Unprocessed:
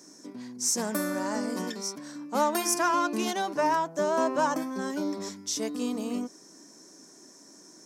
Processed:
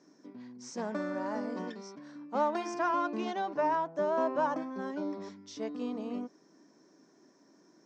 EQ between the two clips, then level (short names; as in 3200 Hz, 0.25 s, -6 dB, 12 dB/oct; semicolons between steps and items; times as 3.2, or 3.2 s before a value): dynamic EQ 690 Hz, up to +4 dB, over -38 dBFS, Q 0.87; brick-wall FIR low-pass 8700 Hz; air absorption 220 m; -6.0 dB